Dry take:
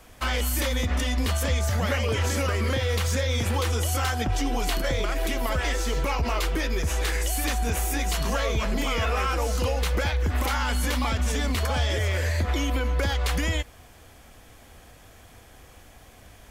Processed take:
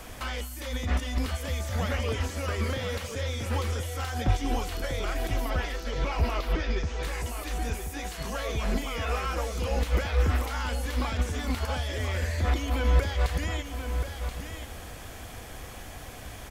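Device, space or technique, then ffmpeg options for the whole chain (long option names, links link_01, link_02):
de-esser from a sidechain: -filter_complex "[0:a]asplit=2[link_01][link_02];[link_02]highpass=4600,apad=whole_len=727933[link_03];[link_01][link_03]sidechaincompress=threshold=-59dB:ratio=4:attack=16:release=42,asettb=1/sr,asplit=3[link_04][link_05][link_06];[link_04]atrim=end=5.504[link_07];[link_05]atrim=start=5.5:end=7.03,asetpts=PTS-STARTPTS,afade=type=in:duration=0.004:curve=qsin,afade=type=out:start_time=1.526:duration=0.004:curve=qsin,lowpass=frequency=5700:width=0.5412,lowpass=frequency=5700:width=1.3066[link_08];[link_06]atrim=start=7.026[link_09];[link_07][link_08]acrossfade=duration=0.004:curve1=hsin:curve2=qsin[link_10];[link_10][link_09]acrossfade=duration=0.004:curve1=qsin:curve2=hsin,aecho=1:1:1029:0.398,volume=8.5dB"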